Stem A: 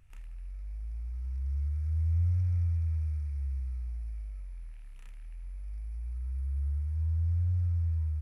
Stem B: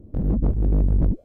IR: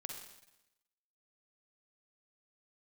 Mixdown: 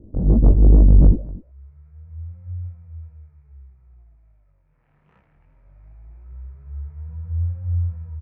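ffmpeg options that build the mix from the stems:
-filter_complex "[0:a]highpass=frequency=94:width=0.5412,highpass=frequency=94:width=1.3066,adelay=100,afade=type=in:start_time=4.66:duration=0.29:silence=0.316228[link_01];[1:a]volume=2dB,asplit=3[link_02][link_03][link_04];[link_03]volume=-16dB[link_05];[link_04]volume=-20dB[link_06];[2:a]atrim=start_sample=2205[link_07];[link_05][link_07]afir=irnorm=-1:irlink=0[link_08];[link_06]aecho=0:1:245:1[link_09];[link_01][link_02][link_08][link_09]amix=inputs=4:normalize=0,dynaudnorm=framelen=110:gausssize=5:maxgain=13.5dB,lowpass=1000,flanger=delay=17:depth=5.1:speed=2.5"

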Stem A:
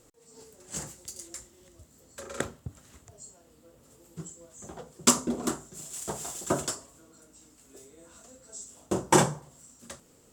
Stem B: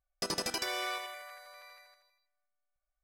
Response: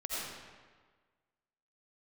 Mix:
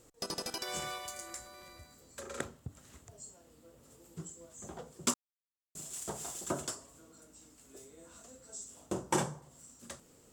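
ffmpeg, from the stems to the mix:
-filter_complex "[0:a]volume=-2dB,asplit=3[link_01][link_02][link_03];[link_01]atrim=end=5.14,asetpts=PTS-STARTPTS,afade=type=out:start_time=5.136:duration=0.004:curve=hsin[link_04];[link_02]atrim=start=5.14:end=5.75,asetpts=PTS-STARTPTS,volume=0[link_05];[link_03]atrim=start=5.75,asetpts=PTS-STARTPTS,afade=type=in:duration=0.004:curve=hsin[link_06];[link_04][link_05][link_06]concat=n=3:v=0:a=1[link_07];[1:a]equalizer=frequency=2000:width_type=o:width=0.77:gain=-6,volume=0.5dB[link_08];[link_07][link_08]amix=inputs=2:normalize=0,acompressor=threshold=-42dB:ratio=1.5"

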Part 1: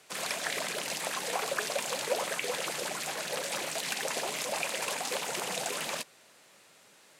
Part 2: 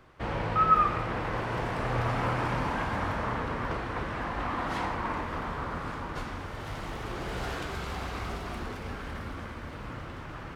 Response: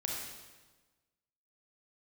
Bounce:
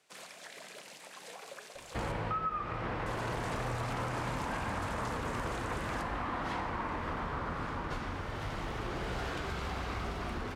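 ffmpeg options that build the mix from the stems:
-filter_complex "[0:a]alimiter=level_in=1dB:limit=-24dB:level=0:latency=1:release=201,volume=-1dB,volume=-14dB,asplit=3[link_01][link_02][link_03];[link_01]atrim=end=2.12,asetpts=PTS-STARTPTS,afade=type=out:start_time=2.116:duration=0.004:curve=hsin[link_04];[link_02]atrim=start=2.12:end=3.06,asetpts=PTS-STARTPTS,volume=0[link_05];[link_03]atrim=start=3.06,asetpts=PTS-STARTPTS,afade=type=in:duration=0.004:curve=hsin[link_06];[link_04][link_05][link_06]concat=n=3:v=0:a=1,asplit=2[link_07][link_08];[link_08]volume=-8dB[link_09];[1:a]acompressor=threshold=-32dB:ratio=8,adelay=1750,volume=0dB[link_10];[2:a]atrim=start_sample=2205[link_11];[link_09][link_11]afir=irnorm=-1:irlink=0[link_12];[link_07][link_10][link_12]amix=inputs=3:normalize=0,equalizer=frequency=15000:width=0.53:gain=-5.5"

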